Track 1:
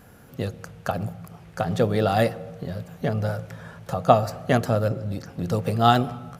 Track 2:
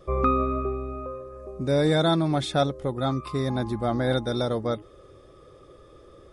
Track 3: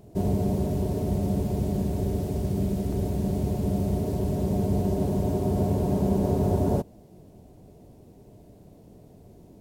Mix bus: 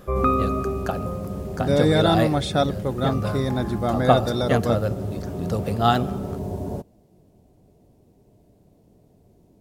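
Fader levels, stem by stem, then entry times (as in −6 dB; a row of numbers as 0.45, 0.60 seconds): −1.5, +2.0, −6.0 decibels; 0.00, 0.00, 0.00 seconds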